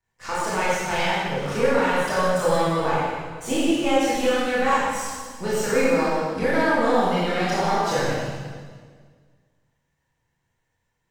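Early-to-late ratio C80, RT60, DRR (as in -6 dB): -1.0 dB, 1.7 s, -10.0 dB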